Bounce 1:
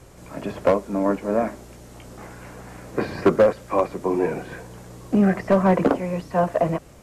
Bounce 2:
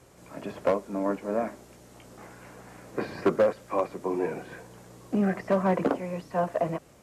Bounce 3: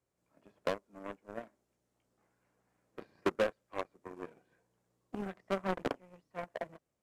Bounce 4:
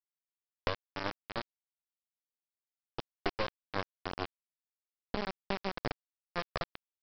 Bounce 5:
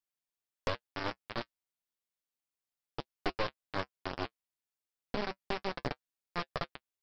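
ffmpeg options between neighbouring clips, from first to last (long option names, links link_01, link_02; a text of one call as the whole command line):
ffmpeg -i in.wav -af "highpass=frequency=140:poles=1,volume=-6dB" out.wav
ffmpeg -i in.wav -af "aeval=exprs='0.237*(cos(1*acos(clip(val(0)/0.237,-1,1)))-cos(1*PI/2))+0.075*(cos(3*acos(clip(val(0)/0.237,-1,1)))-cos(3*PI/2))':channel_layout=same,volume=-4dB" out.wav
ffmpeg -i in.wav -af "acompressor=threshold=-39dB:ratio=4,aresample=11025,acrusher=bits=4:dc=4:mix=0:aa=0.000001,aresample=44100,volume=10.5dB" out.wav
ffmpeg -i in.wav -af "flanger=delay=6.6:depth=1.7:regen=-43:speed=0.31:shape=triangular,aeval=exprs='0.178*sin(PI/2*1.58*val(0)/0.178)':channel_layout=same,volume=-3dB" out.wav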